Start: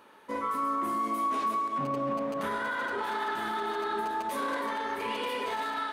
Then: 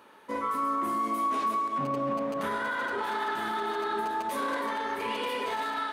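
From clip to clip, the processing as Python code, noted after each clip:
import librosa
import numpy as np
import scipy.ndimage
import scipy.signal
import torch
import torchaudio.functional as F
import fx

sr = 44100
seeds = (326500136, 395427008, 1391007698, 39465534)

y = scipy.signal.sosfilt(scipy.signal.butter(2, 49.0, 'highpass', fs=sr, output='sos'), x)
y = y * librosa.db_to_amplitude(1.0)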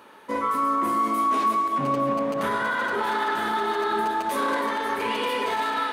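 y = x + 10.0 ** (-12.0 / 20.0) * np.pad(x, (int(530 * sr / 1000.0), 0))[:len(x)]
y = y * librosa.db_to_amplitude(5.5)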